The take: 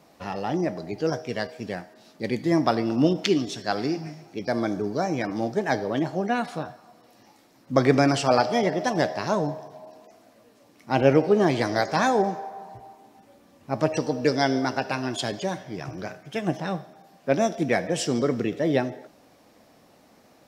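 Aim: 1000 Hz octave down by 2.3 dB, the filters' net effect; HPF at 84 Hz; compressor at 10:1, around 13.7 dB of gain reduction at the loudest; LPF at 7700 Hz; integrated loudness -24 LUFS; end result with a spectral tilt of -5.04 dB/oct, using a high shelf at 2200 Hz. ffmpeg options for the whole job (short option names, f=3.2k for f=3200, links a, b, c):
-af "highpass=84,lowpass=7.7k,equalizer=f=1k:t=o:g=-4,highshelf=f=2.2k:g=3,acompressor=threshold=-28dB:ratio=10,volume=10dB"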